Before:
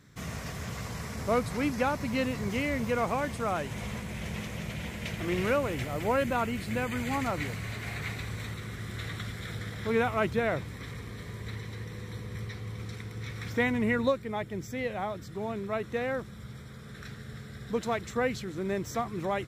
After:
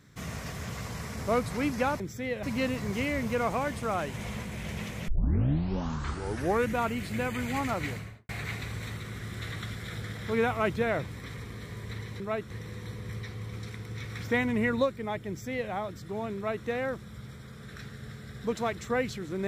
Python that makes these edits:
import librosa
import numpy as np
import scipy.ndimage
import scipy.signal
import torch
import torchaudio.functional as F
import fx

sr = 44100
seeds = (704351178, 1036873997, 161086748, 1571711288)

y = fx.studio_fade_out(x, sr, start_s=7.45, length_s=0.41)
y = fx.edit(y, sr, fx.tape_start(start_s=4.65, length_s=1.75),
    fx.duplicate(start_s=14.54, length_s=0.43, to_s=2.0),
    fx.duplicate(start_s=15.62, length_s=0.31, to_s=11.77), tone=tone)